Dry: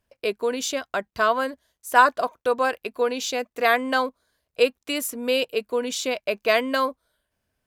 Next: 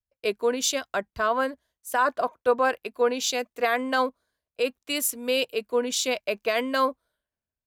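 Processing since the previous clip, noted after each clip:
brickwall limiter −14 dBFS, peak gain reduction 10.5 dB
multiband upward and downward expander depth 70%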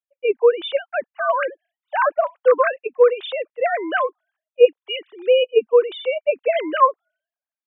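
three sine waves on the formant tracks
level +7 dB

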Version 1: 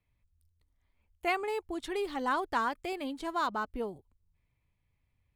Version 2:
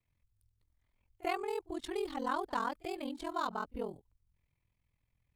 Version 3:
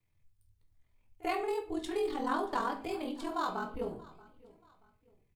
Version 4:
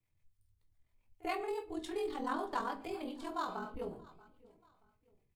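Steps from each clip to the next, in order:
dynamic equaliser 2,000 Hz, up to −6 dB, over −47 dBFS, Q 1.3; echo ahead of the sound 44 ms −22 dB; ring modulation 21 Hz
repeating echo 631 ms, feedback 35%, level −22 dB; convolution reverb RT60 0.45 s, pre-delay 6 ms, DRR 3 dB
two-band tremolo in antiphase 7.2 Hz, depth 50%, crossover 500 Hz; level −2 dB

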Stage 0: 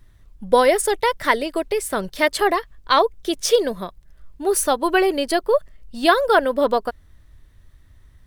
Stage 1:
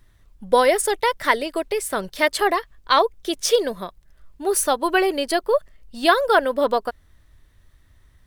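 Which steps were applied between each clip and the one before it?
low-shelf EQ 330 Hz −5 dB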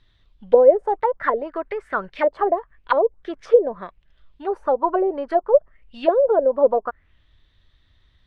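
envelope-controlled low-pass 540–3,800 Hz down, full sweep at −14.5 dBFS
level −5 dB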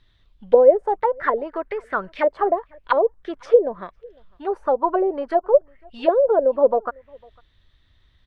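slap from a distant wall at 86 metres, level −28 dB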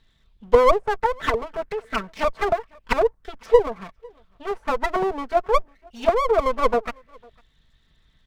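lower of the sound and its delayed copy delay 4.5 ms

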